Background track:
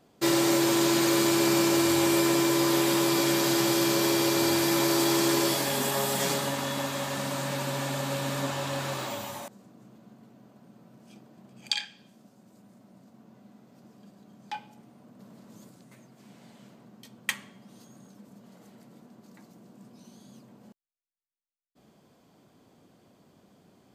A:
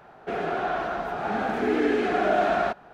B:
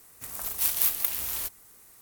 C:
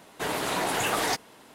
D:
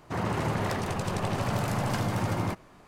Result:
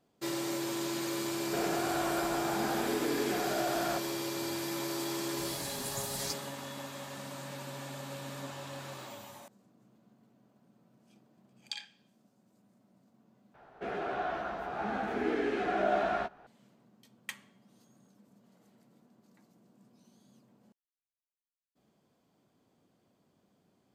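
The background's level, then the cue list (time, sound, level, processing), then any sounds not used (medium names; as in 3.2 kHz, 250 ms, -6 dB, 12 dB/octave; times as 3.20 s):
background track -11.5 dB
1.26 s: add A -2 dB + peak limiter -24.5 dBFS
5.17 s: add C -5.5 dB + brick-wall FIR band-stop 180–3800 Hz
13.54 s: replace with A -8.5 dB + doubling 15 ms -5.5 dB
not used: B, D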